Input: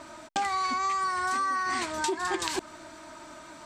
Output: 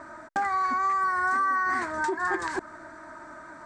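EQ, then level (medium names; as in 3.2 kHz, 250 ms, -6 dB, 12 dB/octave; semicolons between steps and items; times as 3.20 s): steep low-pass 10 kHz 36 dB/octave; resonant high shelf 2.2 kHz -9 dB, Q 3; 0.0 dB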